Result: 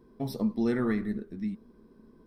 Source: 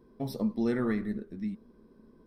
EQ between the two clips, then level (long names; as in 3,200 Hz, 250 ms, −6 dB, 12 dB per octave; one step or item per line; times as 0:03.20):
parametric band 550 Hz −4 dB 0.24 octaves
+1.5 dB